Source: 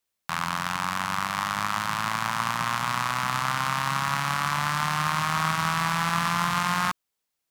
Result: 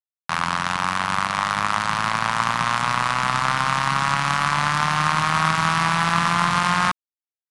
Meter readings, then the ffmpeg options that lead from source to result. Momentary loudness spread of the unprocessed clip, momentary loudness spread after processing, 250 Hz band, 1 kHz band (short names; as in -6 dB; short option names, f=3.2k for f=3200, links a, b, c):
4 LU, 4 LU, +5.0 dB, +5.5 dB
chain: -af "aeval=exprs='sgn(val(0))*max(abs(val(0))-0.00562,0)':c=same,volume=7dB" -ar 22050 -c:a adpcm_ima_wav